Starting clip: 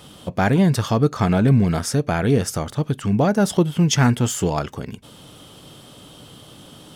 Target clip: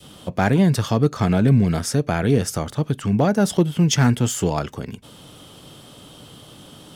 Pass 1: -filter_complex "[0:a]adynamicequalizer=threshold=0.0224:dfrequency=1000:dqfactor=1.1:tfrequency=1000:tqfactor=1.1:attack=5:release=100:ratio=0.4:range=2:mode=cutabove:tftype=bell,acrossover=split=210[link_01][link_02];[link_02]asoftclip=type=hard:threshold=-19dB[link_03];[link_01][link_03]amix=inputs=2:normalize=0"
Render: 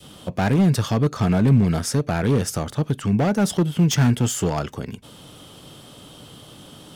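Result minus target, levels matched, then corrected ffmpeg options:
hard clipping: distortion +18 dB
-filter_complex "[0:a]adynamicequalizer=threshold=0.0224:dfrequency=1000:dqfactor=1.1:tfrequency=1000:tqfactor=1.1:attack=5:release=100:ratio=0.4:range=2:mode=cutabove:tftype=bell,acrossover=split=210[link_01][link_02];[link_02]asoftclip=type=hard:threshold=-10.5dB[link_03];[link_01][link_03]amix=inputs=2:normalize=0"

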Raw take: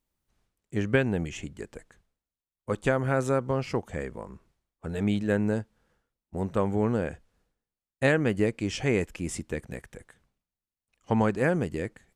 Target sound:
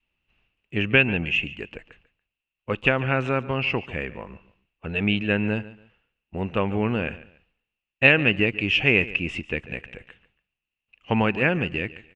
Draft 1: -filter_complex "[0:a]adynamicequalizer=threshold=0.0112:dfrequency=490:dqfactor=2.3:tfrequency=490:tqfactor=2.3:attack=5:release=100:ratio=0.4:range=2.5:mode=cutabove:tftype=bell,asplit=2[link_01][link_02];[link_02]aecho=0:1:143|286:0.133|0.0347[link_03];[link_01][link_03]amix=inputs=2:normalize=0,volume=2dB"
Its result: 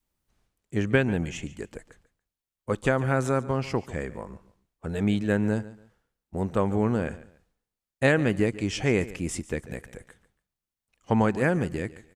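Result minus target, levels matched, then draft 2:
2,000 Hz band −5.5 dB
-filter_complex "[0:a]adynamicequalizer=threshold=0.0112:dfrequency=490:dqfactor=2.3:tfrequency=490:tqfactor=2.3:attack=5:release=100:ratio=0.4:range=2.5:mode=cutabove:tftype=bell,lowpass=frequency=2700:width_type=q:width=14,asplit=2[link_01][link_02];[link_02]aecho=0:1:143|286:0.133|0.0347[link_03];[link_01][link_03]amix=inputs=2:normalize=0,volume=2dB"

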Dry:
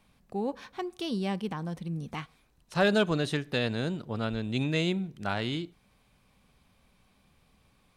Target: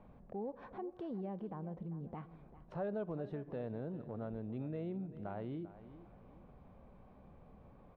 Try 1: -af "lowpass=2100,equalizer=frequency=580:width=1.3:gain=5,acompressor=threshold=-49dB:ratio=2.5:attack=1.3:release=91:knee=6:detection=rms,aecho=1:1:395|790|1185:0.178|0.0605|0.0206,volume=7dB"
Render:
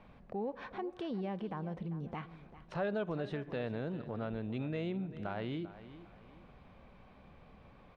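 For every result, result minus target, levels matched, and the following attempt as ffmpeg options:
2,000 Hz band +8.5 dB; downward compressor: peak gain reduction −3.5 dB
-af "lowpass=920,equalizer=frequency=580:width=1.3:gain=5,acompressor=threshold=-49dB:ratio=2.5:attack=1.3:release=91:knee=6:detection=rms,aecho=1:1:395|790|1185:0.178|0.0605|0.0206,volume=7dB"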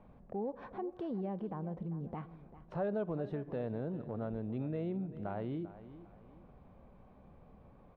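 downward compressor: peak gain reduction −4 dB
-af "lowpass=920,equalizer=frequency=580:width=1.3:gain=5,acompressor=threshold=-55.5dB:ratio=2.5:attack=1.3:release=91:knee=6:detection=rms,aecho=1:1:395|790|1185:0.178|0.0605|0.0206,volume=7dB"

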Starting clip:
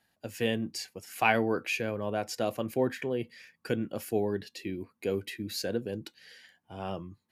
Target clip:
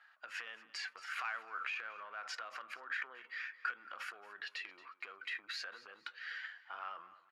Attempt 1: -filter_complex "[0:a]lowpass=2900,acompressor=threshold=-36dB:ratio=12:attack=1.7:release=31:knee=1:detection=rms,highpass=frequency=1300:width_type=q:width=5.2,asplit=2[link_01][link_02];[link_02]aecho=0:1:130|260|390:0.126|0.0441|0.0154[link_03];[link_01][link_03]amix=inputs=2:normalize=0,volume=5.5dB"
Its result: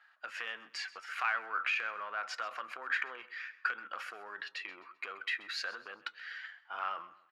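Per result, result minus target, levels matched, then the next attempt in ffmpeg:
echo 96 ms early; downward compressor: peak gain reduction −8 dB
-filter_complex "[0:a]lowpass=2900,acompressor=threshold=-36dB:ratio=12:attack=1.7:release=31:knee=1:detection=rms,highpass=frequency=1300:width_type=q:width=5.2,asplit=2[link_01][link_02];[link_02]aecho=0:1:226|452|678:0.126|0.0441|0.0154[link_03];[link_01][link_03]amix=inputs=2:normalize=0,volume=5.5dB"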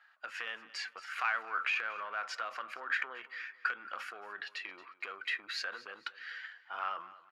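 downward compressor: peak gain reduction −8 dB
-filter_complex "[0:a]lowpass=2900,acompressor=threshold=-45dB:ratio=12:attack=1.7:release=31:knee=1:detection=rms,highpass=frequency=1300:width_type=q:width=5.2,asplit=2[link_01][link_02];[link_02]aecho=0:1:226|452|678:0.126|0.0441|0.0154[link_03];[link_01][link_03]amix=inputs=2:normalize=0,volume=5.5dB"

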